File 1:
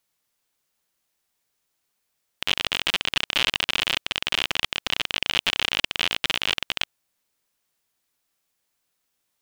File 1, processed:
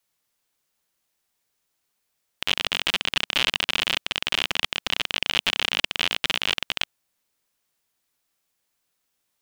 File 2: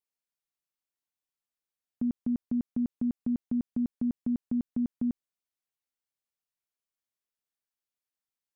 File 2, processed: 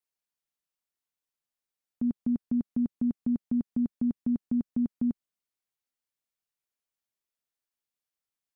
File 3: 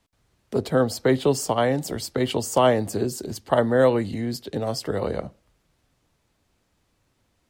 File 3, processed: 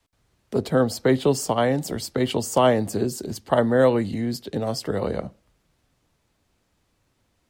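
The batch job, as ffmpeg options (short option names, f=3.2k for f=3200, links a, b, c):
-af "adynamicequalizer=threshold=0.00891:dfrequency=200:dqfactor=1.9:tfrequency=200:tqfactor=1.9:attack=5:release=100:ratio=0.375:range=1.5:mode=boostabove:tftype=bell"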